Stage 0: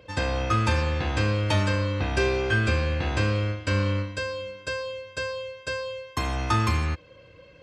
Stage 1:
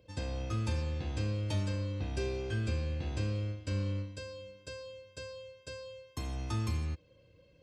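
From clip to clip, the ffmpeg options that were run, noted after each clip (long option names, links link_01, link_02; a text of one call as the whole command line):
ffmpeg -i in.wav -af "equalizer=frequency=1400:width=0.55:gain=-12.5,volume=-8dB" out.wav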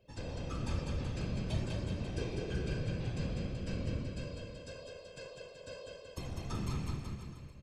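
ffmpeg -i in.wav -filter_complex "[0:a]afftfilt=real='hypot(re,im)*cos(2*PI*random(0))':imag='hypot(re,im)*sin(2*PI*random(1))':win_size=512:overlap=0.75,asplit=2[link_01][link_02];[link_02]aecho=0:1:200|380|542|687.8|819:0.631|0.398|0.251|0.158|0.1[link_03];[link_01][link_03]amix=inputs=2:normalize=0,volume=1.5dB" out.wav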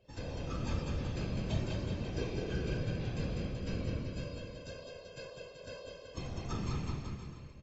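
ffmpeg -i in.wav -ar 24000 -c:a aac -b:a 24k out.aac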